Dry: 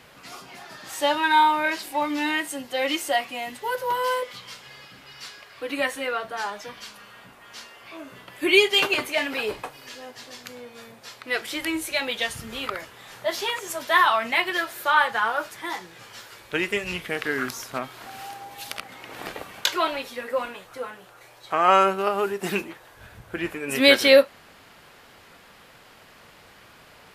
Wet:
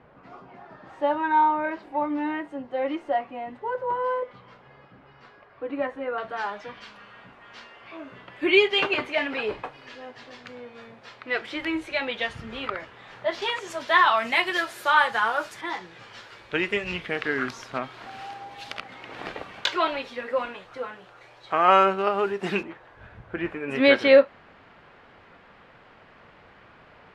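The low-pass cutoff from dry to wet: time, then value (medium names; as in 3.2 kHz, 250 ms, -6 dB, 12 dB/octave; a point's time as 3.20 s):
1.1 kHz
from 6.18 s 2.8 kHz
from 13.42 s 4.7 kHz
from 14.17 s 8.7 kHz
from 15.61 s 3.9 kHz
from 22.63 s 2.2 kHz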